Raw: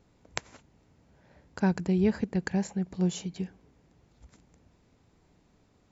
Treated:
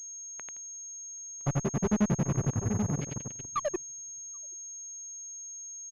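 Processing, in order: repeated pitch sweeps -8.5 st, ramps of 0.936 s; Doppler pass-by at 2.01, 31 m/s, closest 3.2 m; treble ducked by the level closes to 360 Hz, closed at -34.5 dBFS; on a send: flutter echo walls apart 4.9 m, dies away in 1.2 s; on the sum: painted sound fall, 3.51–3.82, 340–1300 Hz -42 dBFS; notches 50/100/150/200/250 Hz; grains 61 ms, grains 11/s; echo 0.78 s -15.5 dB; in parallel at -10 dB: fuzz box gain 48 dB, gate -53 dBFS; on the sum: pulse-width modulation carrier 6500 Hz; gain -2.5 dB

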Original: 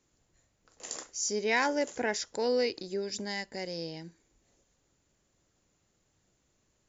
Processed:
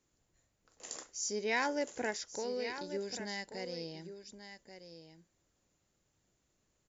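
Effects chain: 2.1–2.8 compressor 2.5:1, threshold -32 dBFS, peak gain reduction 5.5 dB; echo 1.135 s -10.5 dB; gain -5 dB

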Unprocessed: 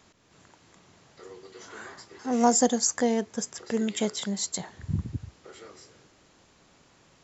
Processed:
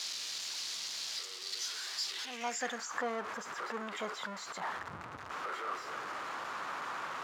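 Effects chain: zero-crossing step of -25 dBFS; band-pass sweep 4600 Hz -> 1200 Hz, 2.03–2.91

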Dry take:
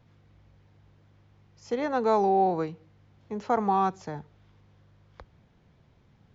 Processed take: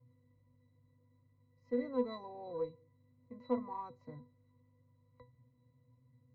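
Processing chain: octave resonator B, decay 0.21 s; added harmonics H 8 -40 dB, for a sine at -24 dBFS; gain +3 dB

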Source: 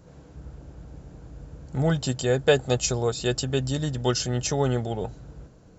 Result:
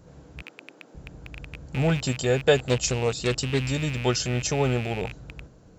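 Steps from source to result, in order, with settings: rattling part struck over -35 dBFS, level -24 dBFS; 0.42–0.95 HPF 260 Hz 24 dB/oct; 2.57–3.62 Doppler distortion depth 0.31 ms

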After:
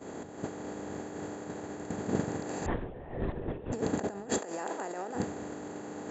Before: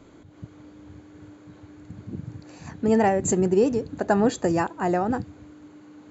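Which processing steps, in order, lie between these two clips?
per-bin compression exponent 0.4; 0.91–1.38 crackle 150/s -50 dBFS; negative-ratio compressor -21 dBFS, ratio -1; expander -12 dBFS; 2.66–3.72 LPC vocoder at 8 kHz whisper; 4.38–5.15 HPF 370 Hz 12 dB/oct

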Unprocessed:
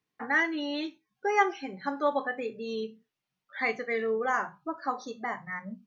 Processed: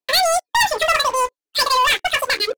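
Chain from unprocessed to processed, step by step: sample leveller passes 5; wide varispeed 2.28×

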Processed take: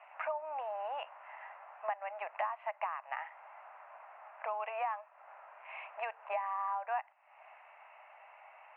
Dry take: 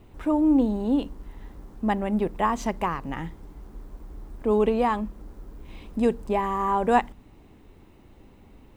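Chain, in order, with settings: Chebyshev band-pass 620–2700 Hz, order 5; compressor 5:1, threshold -44 dBFS, peak gain reduction 24 dB; gain +8 dB

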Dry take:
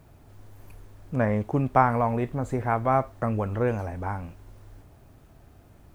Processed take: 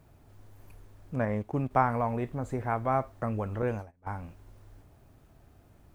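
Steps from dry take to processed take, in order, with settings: 1.19–1.71 transient shaper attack -1 dB, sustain -6 dB; 3.62–4.07 gate -29 dBFS, range -29 dB; gain -5 dB

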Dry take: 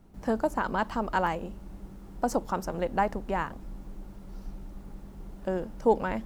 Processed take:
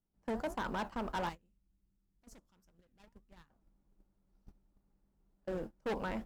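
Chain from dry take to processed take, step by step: flange 1.5 Hz, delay 8.5 ms, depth 9.1 ms, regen -78%; hard clip -31 dBFS, distortion -7 dB; 1.29–3.5 bell 690 Hz -14 dB 2.7 oct; gate -39 dBFS, range -25 dB; gain -1.5 dB

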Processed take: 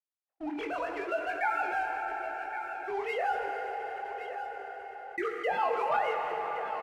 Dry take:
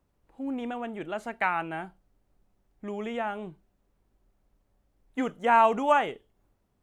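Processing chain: sine-wave speech; HPF 610 Hz 12 dB/oct; gate -50 dBFS, range -57 dB; sample leveller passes 1; limiter -21.5 dBFS, peak gain reduction 10.5 dB; chorus 0.79 Hz, delay 16 ms, depth 8 ms; rotary speaker horn 6 Hz; echo 1.119 s -17 dB; plate-style reverb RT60 4.5 s, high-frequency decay 0.75×, DRR 5 dB; fast leveller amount 50%; gain +2.5 dB

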